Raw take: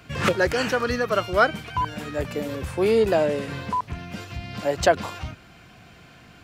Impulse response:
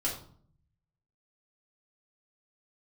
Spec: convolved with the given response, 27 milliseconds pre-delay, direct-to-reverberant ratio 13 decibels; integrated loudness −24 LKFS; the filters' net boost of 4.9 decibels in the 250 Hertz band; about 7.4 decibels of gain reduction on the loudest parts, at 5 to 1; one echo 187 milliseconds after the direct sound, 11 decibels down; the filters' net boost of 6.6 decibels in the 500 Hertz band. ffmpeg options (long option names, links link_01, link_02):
-filter_complex "[0:a]equalizer=frequency=250:width_type=o:gain=4,equalizer=frequency=500:width_type=o:gain=7,acompressor=threshold=-16dB:ratio=5,aecho=1:1:187:0.282,asplit=2[link_01][link_02];[1:a]atrim=start_sample=2205,adelay=27[link_03];[link_02][link_03]afir=irnorm=-1:irlink=0,volume=-18dB[link_04];[link_01][link_04]amix=inputs=2:normalize=0,volume=-1.5dB"